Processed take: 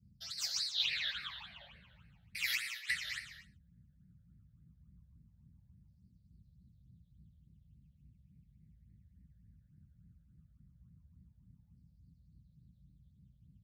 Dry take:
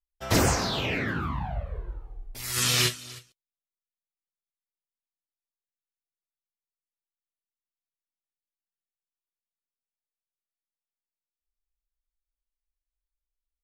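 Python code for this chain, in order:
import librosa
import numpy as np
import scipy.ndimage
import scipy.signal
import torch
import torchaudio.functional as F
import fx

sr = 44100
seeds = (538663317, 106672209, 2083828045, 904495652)

y = fx.filter_lfo_highpass(x, sr, shape='saw_down', hz=0.17, low_hz=840.0, high_hz=5000.0, q=5.0)
y = fx.dmg_noise_band(y, sr, seeds[0], low_hz=47.0, high_hz=190.0, level_db=-66.0)
y = fx.over_compress(y, sr, threshold_db=-28.0, ratio=-0.5)
y = fx.high_shelf(y, sr, hz=4800.0, db=-9.5)
y = fx.rev_gated(y, sr, seeds[1], gate_ms=270, shape='flat', drr_db=7.5)
y = fx.phaser_stages(y, sr, stages=8, low_hz=310.0, high_hz=1000.0, hz=3.5, feedback_pct=40)
y = fx.peak_eq(y, sr, hz=550.0, db=8.5, octaves=0.48)
y = y * 10.0 ** (-3.0 / 20.0)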